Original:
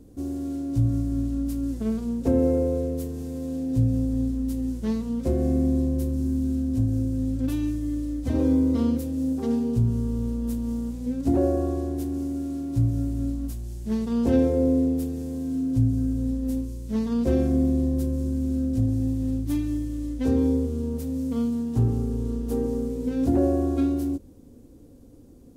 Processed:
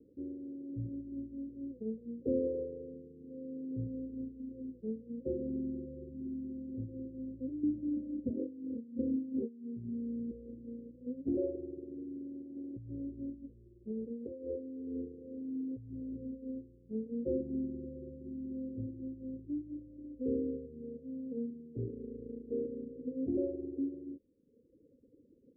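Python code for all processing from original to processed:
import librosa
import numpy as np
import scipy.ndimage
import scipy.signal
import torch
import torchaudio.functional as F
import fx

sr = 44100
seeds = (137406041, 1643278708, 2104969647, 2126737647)

y = fx.chain(x, sr, fx.highpass(hz=61.0, slope=12),
    fx.peak_eq(hz=230.0, db=11.0, octaves=0.36),
    fx.over_compress(threshold_db=-23.0, ratio=-1.0), at=(7.63, 10.31))
y = fx.chain(y, sr, fx.peak_eq(hz=150.0, db=-8.5, octaves=0.39),
    fx.over_compress(threshold_db=-26.0, ratio=-1.0), at=(12.56, 16.17))
y = scipy.signal.sosfilt(scipy.signal.butter(12, 530.0, 'lowpass', fs=sr, output='sos'), y)
y = fx.dereverb_blind(y, sr, rt60_s=1.2)
y = np.diff(y, prepend=0.0)
y = F.gain(torch.from_numpy(y), 18.0).numpy()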